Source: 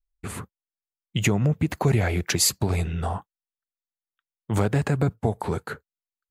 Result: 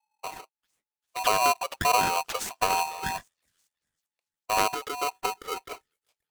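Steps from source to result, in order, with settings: median filter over 9 samples; 4.74–5.69 fixed phaser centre 1100 Hz, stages 8; thin delay 0.393 s, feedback 35%, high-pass 3700 Hz, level -18.5 dB; phaser stages 4, 1.6 Hz, lowest notch 130–4400 Hz; polarity switched at an audio rate 860 Hz; gain -2.5 dB

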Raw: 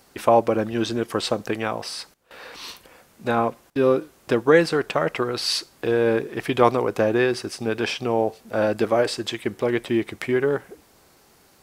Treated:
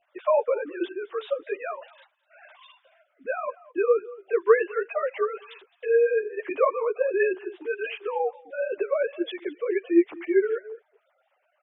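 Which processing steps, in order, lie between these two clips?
sine-wave speech; echo 0.213 s -21 dB; ensemble effect

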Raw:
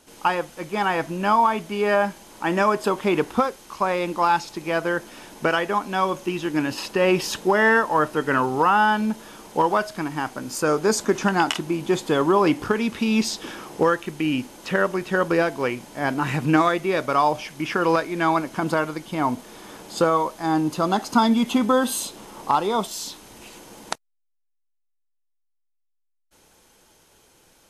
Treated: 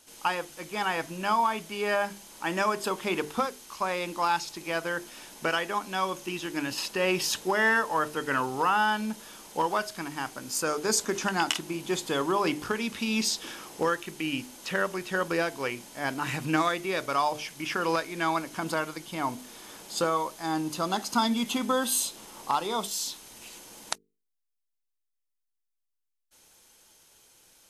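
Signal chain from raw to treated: high shelf 2200 Hz +10 dB; notches 50/100/150/200/250/300/350/400/450 Hz; gain -8.5 dB

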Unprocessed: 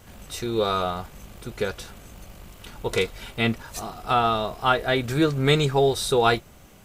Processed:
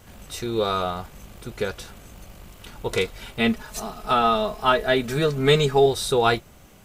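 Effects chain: 3.39–5.86 comb 4.7 ms, depth 66%

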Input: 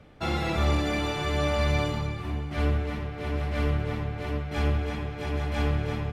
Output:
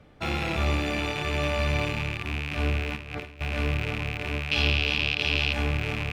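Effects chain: rattling part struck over -36 dBFS, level -18 dBFS; 2.96–3.41 negative-ratio compressor -35 dBFS, ratio -0.5; 4.51–5.53 band shelf 3800 Hz +13 dB 1.3 oct; gain -1.5 dB

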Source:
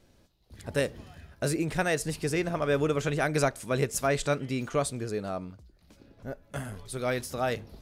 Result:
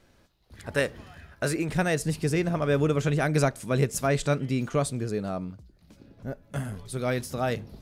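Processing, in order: bell 1500 Hz +6.5 dB 1.7 oct, from 1.69 s 160 Hz

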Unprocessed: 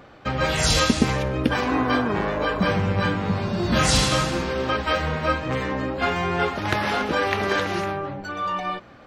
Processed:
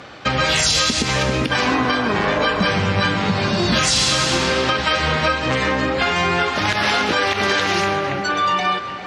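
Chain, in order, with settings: LPF 6200 Hz 12 dB/oct; reverse; upward compressor, threshold -42 dBFS; reverse; HPF 63 Hz; tilt shelf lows -3.5 dB, about 1400 Hz; on a send: split-band echo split 2900 Hz, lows 0.393 s, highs 0.134 s, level -13.5 dB; on the sum: compressor, threshold -25 dBFS, peak gain reduction 10 dB; high shelf 4500 Hz +9 dB; maximiser +16.5 dB; gain -6.5 dB

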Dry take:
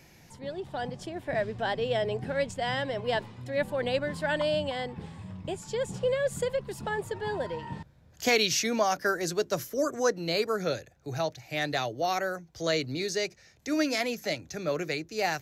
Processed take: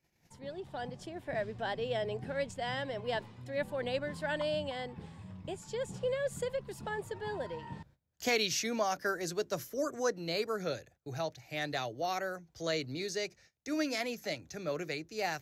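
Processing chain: gate -53 dBFS, range -21 dB; gain -6 dB

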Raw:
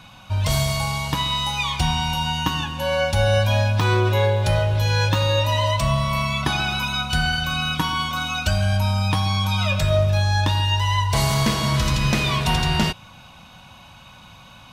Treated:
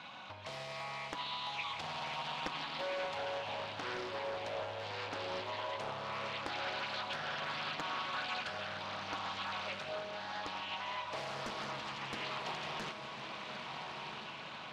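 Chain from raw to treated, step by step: compressor 5:1, threshold -35 dBFS, peak gain reduction 18 dB; BPF 320–3700 Hz; diffused feedback echo 1.326 s, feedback 52%, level -4.5 dB; Doppler distortion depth 0.92 ms; gain -2 dB

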